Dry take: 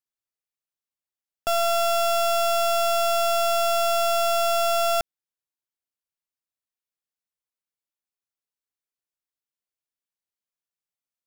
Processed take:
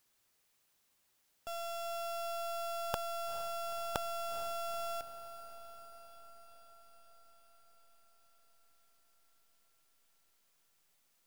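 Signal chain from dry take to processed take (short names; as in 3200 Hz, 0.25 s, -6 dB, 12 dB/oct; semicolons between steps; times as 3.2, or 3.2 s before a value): 2.94–3.96 sample leveller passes 3; wrapped overs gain 27.5 dB; diffused feedback echo 0.45 s, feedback 67%, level -13 dB; gain +17.5 dB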